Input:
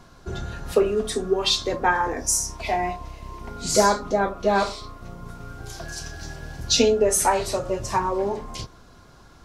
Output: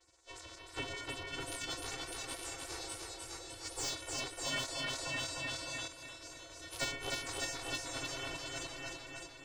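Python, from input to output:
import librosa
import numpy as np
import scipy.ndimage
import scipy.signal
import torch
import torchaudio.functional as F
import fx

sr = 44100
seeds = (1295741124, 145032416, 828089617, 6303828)

p1 = fx.lower_of_two(x, sr, delay_ms=4.5)
p2 = fx.chorus_voices(p1, sr, voices=6, hz=0.45, base_ms=13, depth_ms=2.8, mix_pct=55)
p3 = fx.vocoder(p2, sr, bands=4, carrier='square', carrier_hz=204.0)
p4 = p3 + 10.0 ** (-4.5 / 20.0) * np.pad(p3, (int(602 * sr / 1000.0), 0))[:len(p3)]
p5 = fx.rider(p4, sr, range_db=4, speed_s=2.0)
p6 = p4 + (p5 * 10.0 ** (0.0 / 20.0))
p7 = fx.spec_gate(p6, sr, threshold_db=-30, keep='weak')
p8 = fx.comb(p7, sr, ms=2.4, depth=0.44, at=(2.78, 3.9))
p9 = fx.echo_feedback(p8, sr, ms=304, feedback_pct=57, wet_db=-3.5)
p10 = 10.0 ** (-32.0 / 20.0) * np.tanh(p9 / 10.0 ** (-32.0 / 20.0))
p11 = fx.env_flatten(p10, sr, amount_pct=50, at=(4.88, 5.88))
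y = p11 * 10.0 ** (5.0 / 20.0)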